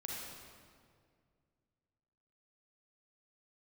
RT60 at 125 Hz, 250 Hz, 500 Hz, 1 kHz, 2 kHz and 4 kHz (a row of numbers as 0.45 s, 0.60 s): 2.9 s, 2.6 s, 2.3 s, 1.9 s, 1.7 s, 1.4 s